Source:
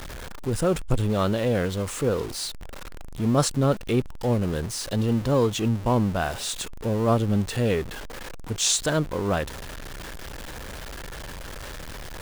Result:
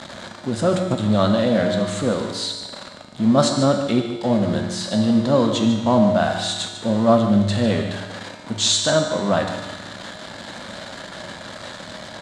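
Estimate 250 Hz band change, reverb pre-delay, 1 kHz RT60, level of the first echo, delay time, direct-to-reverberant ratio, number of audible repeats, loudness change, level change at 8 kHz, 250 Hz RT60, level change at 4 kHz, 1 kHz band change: +7.5 dB, 3 ms, 1.4 s, -12.0 dB, 0.148 s, 2.5 dB, 1, +5.5 dB, +1.5 dB, 1.4 s, +7.5 dB, +6.0 dB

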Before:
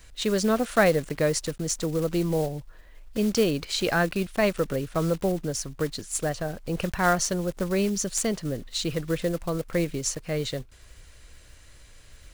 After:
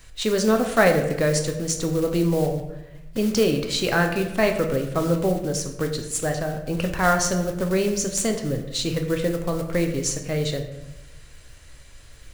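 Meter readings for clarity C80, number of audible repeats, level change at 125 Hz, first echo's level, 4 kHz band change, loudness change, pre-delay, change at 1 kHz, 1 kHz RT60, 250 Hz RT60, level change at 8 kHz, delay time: 10.0 dB, none, +4.5 dB, none, +3.0 dB, +3.5 dB, 7 ms, +3.5 dB, 0.85 s, 1.1 s, +3.0 dB, none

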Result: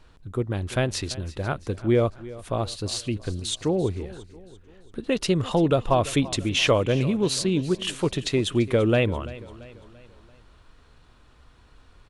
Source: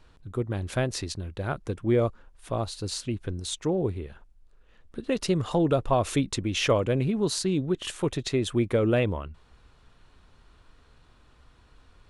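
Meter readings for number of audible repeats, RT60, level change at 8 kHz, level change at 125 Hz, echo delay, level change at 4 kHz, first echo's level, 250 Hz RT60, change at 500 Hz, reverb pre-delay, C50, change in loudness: 3, none, +3.0 dB, +2.5 dB, 0.339 s, +5.0 dB, -18.0 dB, none, +2.5 dB, none, none, +3.0 dB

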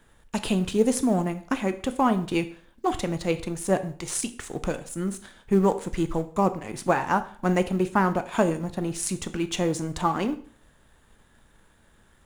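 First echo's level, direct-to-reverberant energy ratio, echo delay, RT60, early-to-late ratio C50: none, 10.0 dB, none, 0.50 s, 14.5 dB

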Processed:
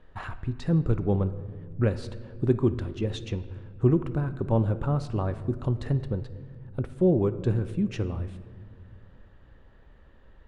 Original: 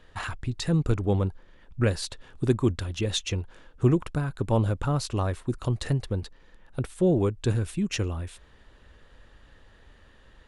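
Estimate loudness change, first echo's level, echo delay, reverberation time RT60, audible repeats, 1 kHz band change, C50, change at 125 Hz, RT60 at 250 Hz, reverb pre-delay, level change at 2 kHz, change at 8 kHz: 0.0 dB, none, none, 1.8 s, none, -2.5 dB, 13.5 dB, 0.0 dB, 2.7 s, 5 ms, -6.0 dB, under -15 dB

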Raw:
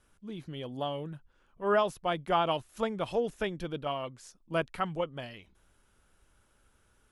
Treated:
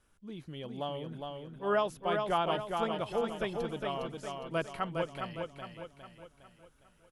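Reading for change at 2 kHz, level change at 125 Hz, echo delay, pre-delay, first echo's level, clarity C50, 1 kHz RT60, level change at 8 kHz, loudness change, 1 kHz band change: -1.5 dB, -1.5 dB, 0.409 s, none, -4.5 dB, none, none, -1.5 dB, -2.0 dB, -1.5 dB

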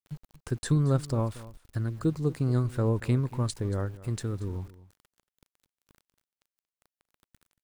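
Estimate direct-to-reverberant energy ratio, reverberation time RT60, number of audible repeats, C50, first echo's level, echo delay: none, none, 1, none, -18.0 dB, 0.231 s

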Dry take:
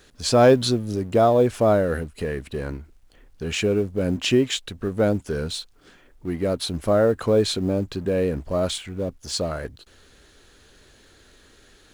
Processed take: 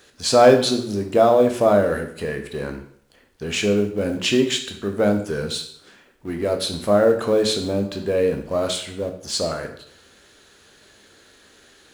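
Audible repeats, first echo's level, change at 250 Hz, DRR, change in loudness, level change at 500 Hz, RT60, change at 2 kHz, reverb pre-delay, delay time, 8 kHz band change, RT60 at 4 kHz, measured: none, none, +1.0 dB, 4.5 dB, +2.0 dB, +2.5 dB, 0.65 s, +3.5 dB, 6 ms, none, +3.5 dB, 0.55 s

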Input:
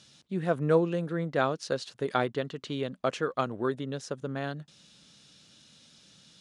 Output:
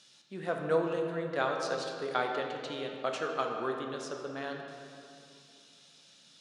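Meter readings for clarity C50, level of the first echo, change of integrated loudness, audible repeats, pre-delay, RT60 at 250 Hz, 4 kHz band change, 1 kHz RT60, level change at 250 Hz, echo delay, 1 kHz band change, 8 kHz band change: 3.0 dB, none, -3.5 dB, none, 12 ms, 3.1 s, -1.0 dB, 2.5 s, -7.0 dB, none, -1.0 dB, -1.5 dB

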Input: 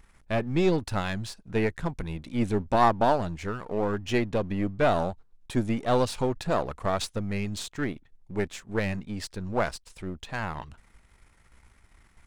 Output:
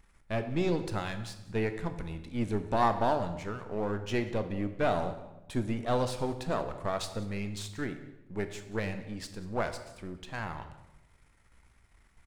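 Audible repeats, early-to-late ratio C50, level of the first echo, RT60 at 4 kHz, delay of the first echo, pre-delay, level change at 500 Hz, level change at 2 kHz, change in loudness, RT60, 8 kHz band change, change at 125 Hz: 1, 10.5 dB, -20.5 dB, 0.70 s, 0.185 s, 16 ms, -5.0 dB, -5.0 dB, -5.0 dB, 1.0 s, -5.0 dB, -4.5 dB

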